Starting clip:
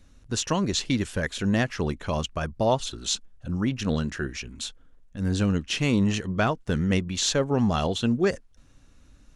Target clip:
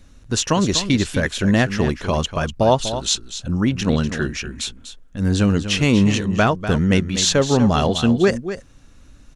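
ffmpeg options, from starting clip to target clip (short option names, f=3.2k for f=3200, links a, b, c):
-af "aecho=1:1:245:0.282,volume=7dB"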